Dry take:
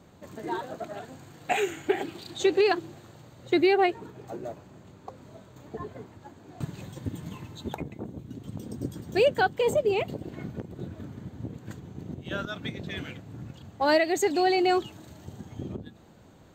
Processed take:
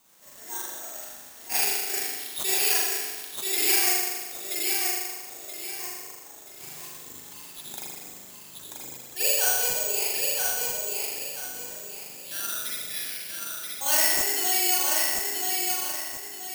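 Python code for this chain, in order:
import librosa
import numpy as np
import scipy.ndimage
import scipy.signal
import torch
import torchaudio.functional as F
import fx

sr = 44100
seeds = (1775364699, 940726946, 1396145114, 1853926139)

p1 = fx.weighting(x, sr, curve='ITU-R 468')
p2 = p1 + fx.echo_feedback(p1, sr, ms=979, feedback_pct=34, wet_db=-3.5, dry=0)
p3 = fx.rev_spring(p2, sr, rt60_s=1.4, pass_ms=(39,), chirp_ms=65, drr_db=-8.0)
p4 = (np.kron(p3[::6], np.eye(6)[0]) * 6)[:len(p3)]
p5 = fx.attack_slew(p4, sr, db_per_s=250.0)
y = F.gain(torch.from_numpy(p5), -14.0).numpy()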